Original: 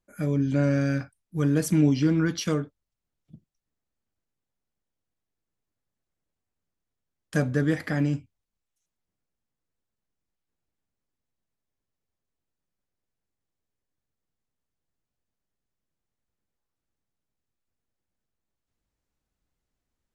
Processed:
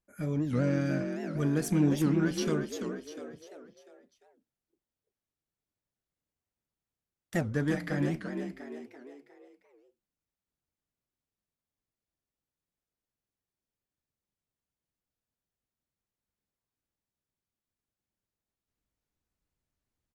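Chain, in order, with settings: added harmonics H 8 -29 dB, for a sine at -9.5 dBFS; frequency-shifting echo 0.348 s, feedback 46%, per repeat +46 Hz, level -6.5 dB; record warp 78 rpm, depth 250 cents; gain -5.5 dB

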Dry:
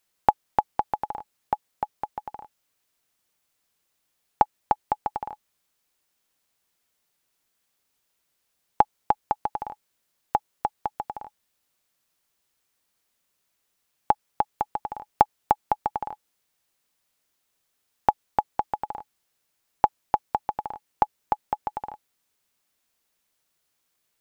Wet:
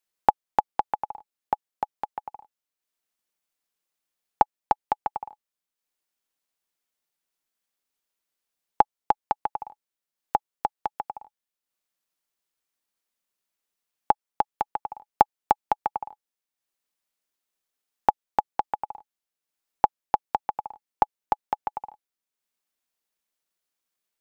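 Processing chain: bell 90 Hz -14.5 dB 0.77 oct; transient shaper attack +10 dB, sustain -5 dB; gain -9.5 dB

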